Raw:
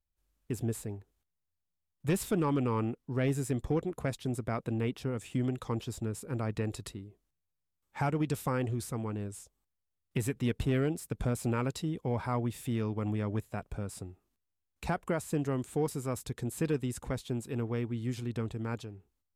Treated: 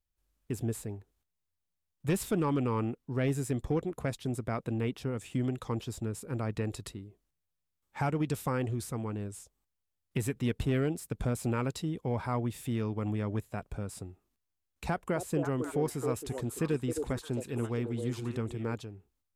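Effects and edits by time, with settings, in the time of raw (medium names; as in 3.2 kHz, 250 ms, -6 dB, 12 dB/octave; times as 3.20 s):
14.89–18.74 s: repeats whose band climbs or falls 267 ms, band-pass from 440 Hz, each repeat 1.4 oct, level -2 dB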